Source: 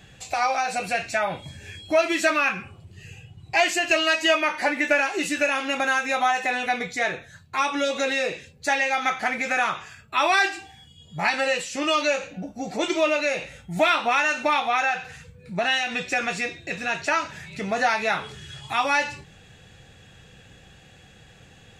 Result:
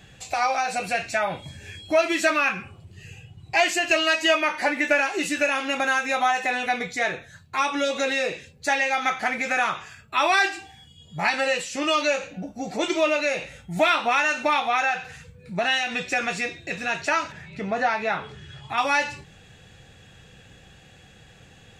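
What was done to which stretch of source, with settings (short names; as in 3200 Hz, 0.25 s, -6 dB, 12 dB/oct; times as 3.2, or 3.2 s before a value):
17.32–18.78 LPF 2000 Hz 6 dB/oct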